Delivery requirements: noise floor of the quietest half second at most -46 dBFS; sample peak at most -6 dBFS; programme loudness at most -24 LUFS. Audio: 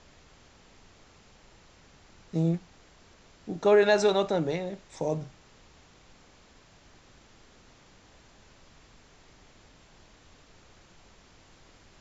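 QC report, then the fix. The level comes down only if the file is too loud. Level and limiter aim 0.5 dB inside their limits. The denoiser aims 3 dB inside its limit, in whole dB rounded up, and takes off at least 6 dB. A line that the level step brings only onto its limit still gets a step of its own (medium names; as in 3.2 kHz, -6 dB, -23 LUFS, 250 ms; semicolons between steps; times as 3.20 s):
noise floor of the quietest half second -57 dBFS: pass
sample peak -11.0 dBFS: pass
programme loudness -27.0 LUFS: pass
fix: none needed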